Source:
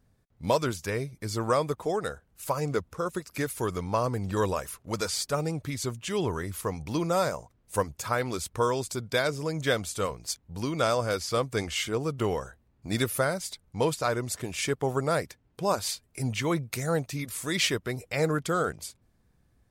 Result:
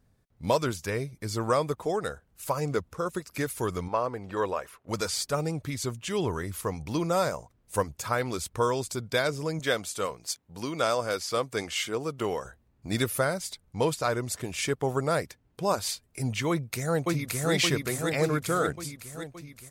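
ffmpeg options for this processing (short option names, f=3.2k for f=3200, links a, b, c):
-filter_complex "[0:a]asettb=1/sr,asplit=3[a][b][c];[a]atrim=end=3.884[d];[b]atrim=start=3.88:end=4.89,asetpts=PTS-STARTPTS,afade=t=in:d=0.004:c=qsin,afade=t=out:st=1.006:d=0.004:c=qsin,bass=f=250:g=-12,treble=f=4k:g=-13[e];[c]atrim=start=4.886[f];[d][e]acrossfade=d=0.004:c1=hsin:c2=qsin[g];[g][f]acrossfade=d=0.004:c1=qsin:c2=hsin,asettb=1/sr,asplit=3[h][i][j];[h]atrim=end=9.594[k];[i]atrim=start=9.59:end=12.45,asetpts=PTS-STARTPTS,afade=t=in:d=0.004:c=qsin,afade=t=out:st=2.856:d=0.004:c=qsin,highpass=f=260:p=1[l];[j]atrim=start=12.446[m];[k][l]acrossfade=d=0.004:c1=hsin:c2=qsin[n];[n][m]acrossfade=d=0.004:c1=qsin:c2=hsin,asplit=2[o][p];[p]afade=t=in:st=16.49:d=0.01,afade=t=out:st=17.52:d=0.01,aecho=0:1:570|1140|1710|2280|2850|3420|3990|4560|5130:0.944061|0.566437|0.339862|0.203917|0.12235|0.0734102|0.0440461|0.0264277|0.0158566[q];[o][q]amix=inputs=2:normalize=0"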